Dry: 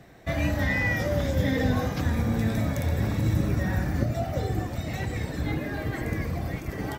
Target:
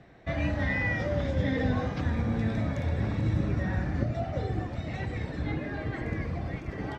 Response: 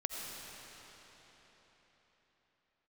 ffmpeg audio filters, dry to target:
-af "lowpass=3800,volume=0.708"

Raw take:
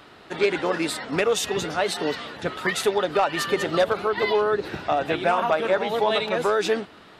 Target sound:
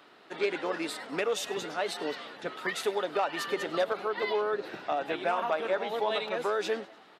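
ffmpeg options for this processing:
-filter_complex "[0:a]highpass=240,equalizer=f=8700:t=o:w=1.1:g=-3,asplit=5[s0][s1][s2][s3][s4];[s1]adelay=99,afreqshift=110,volume=0.0891[s5];[s2]adelay=198,afreqshift=220,volume=0.0473[s6];[s3]adelay=297,afreqshift=330,volume=0.0251[s7];[s4]adelay=396,afreqshift=440,volume=0.0133[s8];[s0][s5][s6][s7][s8]amix=inputs=5:normalize=0,volume=0.422"

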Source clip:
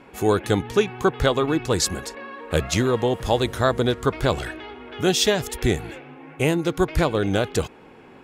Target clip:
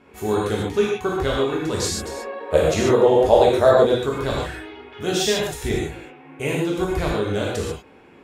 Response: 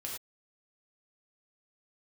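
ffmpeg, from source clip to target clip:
-filter_complex "[0:a]asettb=1/sr,asplit=3[s0][s1][s2];[s0]atrim=end=2.004[s3];[s1]atrim=start=2:end=3.84,asetpts=PTS-STARTPTS,afade=t=in:d=0.004:c=qsin,afade=t=out:st=1.836:d=0.004:c=qsin,equalizer=f=580:t=o:w=1.4:g=13[s4];[s2]atrim=start=3.836[s5];[s3][s4]acrossfade=d=0.004:c1=hsin:c2=qsin[s6];[s6][s5]acrossfade=d=0.004:c1=qsin:c2=hsin[s7];[1:a]atrim=start_sample=2205,asetrate=33957,aresample=44100[s8];[s7][s8]afir=irnorm=-1:irlink=0,volume=0.668"

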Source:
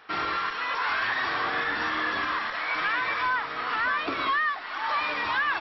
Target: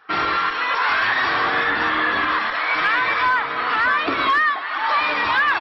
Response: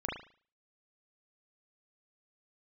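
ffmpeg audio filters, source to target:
-filter_complex "[0:a]asettb=1/sr,asplit=3[s0][s1][s2];[s0]atrim=end=1.704[s3];[s1]atrim=start=1.7:end=2.3,asetpts=PTS-STARTPTS,afade=t=in:d=0.004:c=qsin,afade=t=out:st=0.596:d=0.004:c=qsin,lowpass=4800[s4];[s2]atrim=start=2.296[s5];[s3][s4]acrossfade=d=0.004:c1=hsin:c2=qsin[s6];[s6][s5]acrossfade=d=0.004:c1=qsin:c2=hsin,aecho=1:1:287:0.168,volume=10,asoftclip=hard,volume=0.1,afftdn=nr=13:nf=-46,volume=2.51"

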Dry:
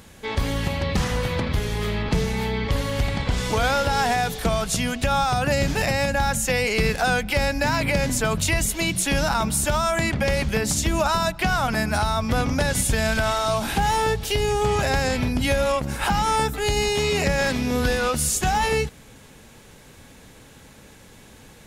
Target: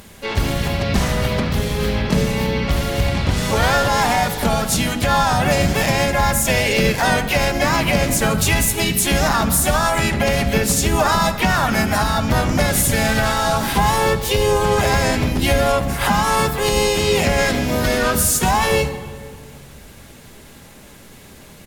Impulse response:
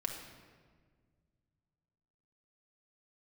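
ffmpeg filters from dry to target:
-filter_complex "[0:a]equalizer=f=14000:w=0.89:g=5.5,asplit=3[s0][s1][s2];[s1]asetrate=35002,aresample=44100,atempo=1.25992,volume=0.224[s3];[s2]asetrate=55563,aresample=44100,atempo=0.793701,volume=0.631[s4];[s0][s3][s4]amix=inputs=3:normalize=0,asplit=2[s5][s6];[1:a]atrim=start_sample=2205,asetrate=37926,aresample=44100[s7];[s6][s7]afir=irnorm=-1:irlink=0,volume=0.794[s8];[s5][s8]amix=inputs=2:normalize=0,volume=0.75"

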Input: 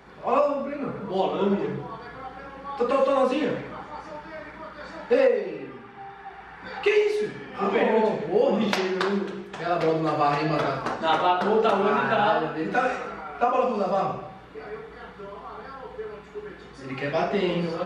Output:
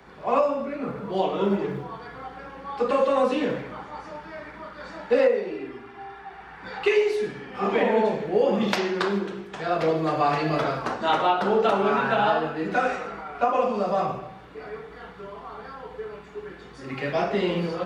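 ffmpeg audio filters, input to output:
-filter_complex "[0:a]asettb=1/sr,asplit=3[s0][s1][s2];[s0]atrim=end=5.504[s3];[s1]atrim=start=5.5:end=6.19,asetpts=PTS-STARTPTS,afade=t=in:d=0.004:c=qsin,afade=t=out:st=0.686:d=0.004:c=qsin,aecho=1:1:2.9:0.65,atrim=end_sample=30429[s4];[s2]atrim=start=6.186[s5];[s3][s4]acrossfade=d=0.004:c1=hsin:c2=qsin[s6];[s6][s5]acrossfade=d=0.004:c1=qsin:c2=hsin,acrossover=split=120|370|2300[s7][s8][s9][s10];[s7]acrusher=bits=5:mode=log:mix=0:aa=0.000001[s11];[s11][s8][s9][s10]amix=inputs=4:normalize=0"

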